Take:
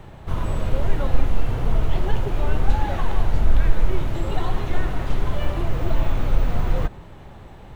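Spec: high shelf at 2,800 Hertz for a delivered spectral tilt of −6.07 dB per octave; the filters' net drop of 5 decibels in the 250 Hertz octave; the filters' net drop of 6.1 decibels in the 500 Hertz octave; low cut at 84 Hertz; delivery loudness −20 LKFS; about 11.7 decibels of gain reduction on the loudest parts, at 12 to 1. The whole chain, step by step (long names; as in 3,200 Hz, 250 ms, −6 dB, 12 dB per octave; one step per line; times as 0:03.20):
high-pass filter 84 Hz
parametric band 250 Hz −5.5 dB
parametric band 500 Hz −6 dB
high-shelf EQ 2,800 Hz −8 dB
downward compressor 12 to 1, threshold −37 dBFS
level +22.5 dB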